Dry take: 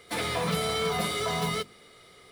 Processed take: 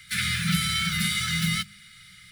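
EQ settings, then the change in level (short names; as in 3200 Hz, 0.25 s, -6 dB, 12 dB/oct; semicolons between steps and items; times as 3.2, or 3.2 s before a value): Chebyshev band-stop 200–1400 Hz, order 5; +7.0 dB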